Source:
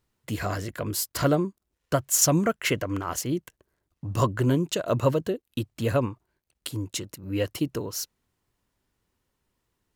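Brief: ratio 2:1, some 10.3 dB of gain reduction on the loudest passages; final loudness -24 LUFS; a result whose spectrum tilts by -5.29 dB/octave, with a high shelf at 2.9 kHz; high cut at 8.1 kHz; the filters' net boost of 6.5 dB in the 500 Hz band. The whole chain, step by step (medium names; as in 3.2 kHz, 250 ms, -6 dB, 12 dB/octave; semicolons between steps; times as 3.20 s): low-pass 8.1 kHz; peaking EQ 500 Hz +8 dB; treble shelf 2.9 kHz -5.5 dB; compression 2:1, threshold -32 dBFS; trim +8.5 dB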